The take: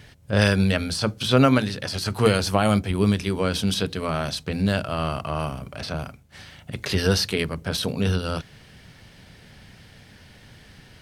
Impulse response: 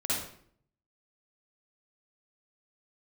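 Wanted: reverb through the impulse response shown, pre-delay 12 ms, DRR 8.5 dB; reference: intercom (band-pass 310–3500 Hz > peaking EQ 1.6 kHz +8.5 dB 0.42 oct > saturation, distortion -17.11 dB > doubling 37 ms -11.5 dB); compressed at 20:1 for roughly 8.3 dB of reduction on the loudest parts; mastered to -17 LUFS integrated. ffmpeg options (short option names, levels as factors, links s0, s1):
-filter_complex "[0:a]acompressor=threshold=0.1:ratio=20,asplit=2[s0][s1];[1:a]atrim=start_sample=2205,adelay=12[s2];[s1][s2]afir=irnorm=-1:irlink=0,volume=0.168[s3];[s0][s3]amix=inputs=2:normalize=0,highpass=310,lowpass=3500,equalizer=f=1600:t=o:w=0.42:g=8.5,asoftclip=threshold=0.133,asplit=2[s4][s5];[s5]adelay=37,volume=0.266[s6];[s4][s6]amix=inputs=2:normalize=0,volume=4.47"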